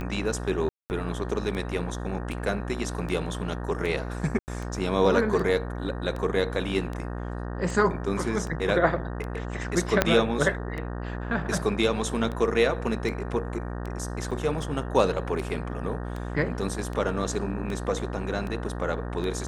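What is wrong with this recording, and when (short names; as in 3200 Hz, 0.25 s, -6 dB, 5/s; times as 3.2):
buzz 60 Hz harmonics 31 -33 dBFS
tick 78 rpm -22 dBFS
0.69–0.9 gap 0.209 s
4.39–4.48 gap 89 ms
10.02 pop -4 dBFS
14.31 gap 5 ms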